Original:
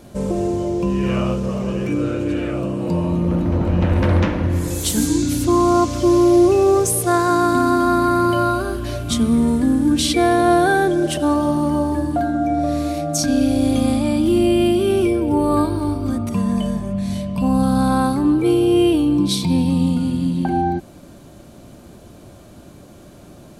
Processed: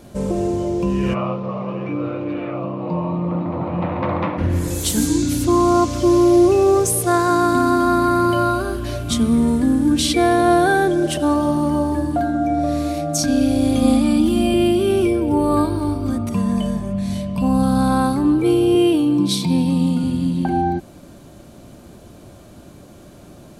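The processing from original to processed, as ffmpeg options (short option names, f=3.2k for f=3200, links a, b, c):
-filter_complex "[0:a]asplit=3[a][b][c];[a]afade=t=out:st=1.13:d=0.02[d];[b]highpass=f=130:w=0.5412,highpass=f=130:w=1.3066,equalizer=f=230:t=q:w=4:g=-10,equalizer=f=400:t=q:w=4:g=-7,equalizer=f=760:t=q:w=4:g=4,equalizer=f=1.1k:t=q:w=4:g=7,equalizer=f=1.6k:t=q:w=4:g=-9,equalizer=f=3k:t=q:w=4:g=-7,lowpass=f=3.4k:w=0.5412,lowpass=f=3.4k:w=1.3066,afade=t=in:st=1.13:d=0.02,afade=t=out:st=4.37:d=0.02[e];[c]afade=t=in:st=4.37:d=0.02[f];[d][e][f]amix=inputs=3:normalize=0,asettb=1/sr,asplit=3[g][h][i];[g]atrim=end=13.824[j];[h]atrim=start=13.82:end=14.54,asetpts=PTS-STARTPTS,afade=t=in:d=0.004:c=qsin,afade=t=out:st=0.716:d=0.004:c=qsin,aecho=1:1:4.1:0.65,atrim=end_sample=31752[k];[i]atrim=start=14.536[l];[j][k]acrossfade=d=0.004:c1=hsin:c2=qsin[m];[m][l]acrossfade=d=0.004:c1=qsin:c2=hsin,asettb=1/sr,asplit=3[n][o][p];[n]atrim=end=18.754[q];[o]atrim=start=18.75:end=20.04,asetpts=PTS-STARTPTS,afade=t=in:d=0.004:c=qsin,afade=t=out:st=1.286:d=0.004:c=qsin,highpass=f=110:w=0.5412,highpass=f=110:w=1.3066[r];[p]atrim=start=20.036[s];[q][r]acrossfade=d=0.004:c1=hsin:c2=qsin[t];[t][s]acrossfade=d=0.004:c1=qsin:c2=hsin"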